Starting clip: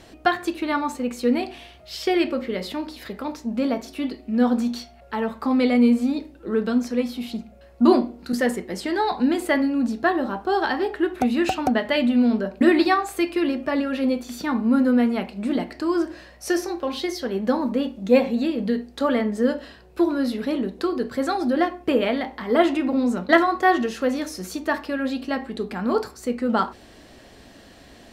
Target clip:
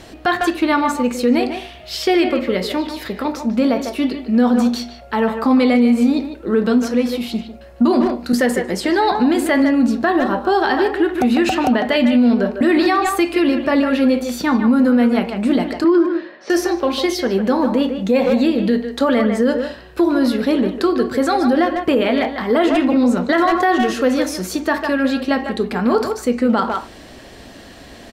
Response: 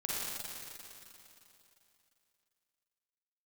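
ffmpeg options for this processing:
-filter_complex "[0:a]asettb=1/sr,asplit=3[a][b][c];[a]atrim=end=15.844[d];[b]atrim=start=15.84:end=16.5,asetpts=PTS-STARTPTS,afade=t=in:d=0.004:c=qsin,afade=t=out:st=0.656:d=0.004:c=qsin,highpass=f=210:w=0.5412,highpass=f=210:w=1.3066,equalizer=f=360:t=q:w=4:g=6,equalizer=f=700:t=q:w=4:g=-6,equalizer=f=2.7k:t=q:w=4:g=-6,lowpass=f=3.6k:w=0.5412,lowpass=f=3.6k:w=1.3066[e];[c]atrim=start=16.496[f];[d][e]acrossfade=d=0.004:c1=hsin:c2=qsin[g];[g][f]acrossfade=d=0.004:c1=qsin:c2=hsin,asplit=2[h][i];[i]adelay=150,highpass=300,lowpass=3.4k,asoftclip=type=hard:threshold=-13dB,volume=-8dB[j];[h][j]amix=inputs=2:normalize=0,alimiter=level_in=14dB:limit=-1dB:release=50:level=0:latency=1,volume=-6dB"

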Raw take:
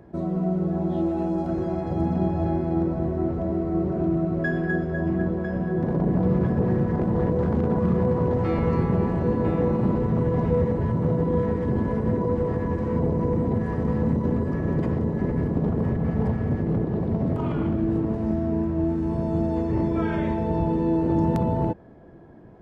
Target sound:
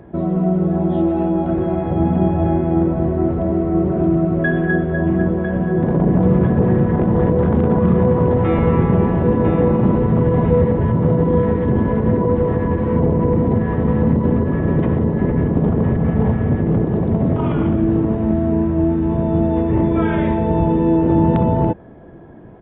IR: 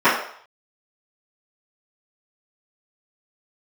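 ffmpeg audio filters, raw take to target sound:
-af "aresample=8000,aresample=44100,volume=7.5dB"

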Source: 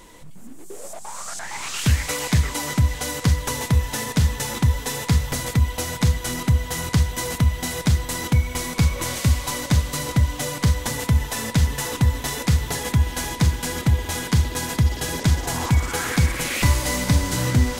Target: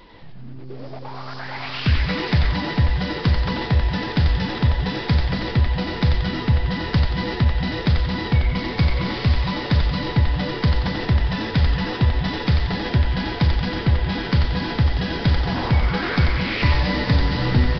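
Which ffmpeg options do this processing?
-filter_complex "[0:a]asplit=7[a][b][c][d][e][f][g];[b]adelay=90,afreqshift=-130,volume=-4dB[h];[c]adelay=180,afreqshift=-260,volume=-10dB[i];[d]adelay=270,afreqshift=-390,volume=-16dB[j];[e]adelay=360,afreqshift=-520,volume=-22.1dB[k];[f]adelay=450,afreqshift=-650,volume=-28.1dB[l];[g]adelay=540,afreqshift=-780,volume=-34.1dB[m];[a][h][i][j][k][l][m]amix=inputs=7:normalize=0,aresample=11025,aresample=44100"

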